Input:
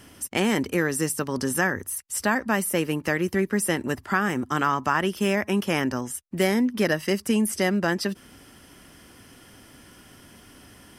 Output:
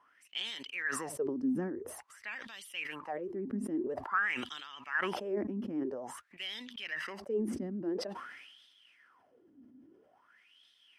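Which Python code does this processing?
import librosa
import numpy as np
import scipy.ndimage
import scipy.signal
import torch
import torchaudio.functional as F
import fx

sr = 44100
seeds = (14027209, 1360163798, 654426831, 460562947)

y = fx.vibrato(x, sr, rate_hz=12.0, depth_cents=39.0)
y = fx.wah_lfo(y, sr, hz=0.49, low_hz=250.0, high_hz=3600.0, q=10.0)
y = fx.sustainer(y, sr, db_per_s=41.0)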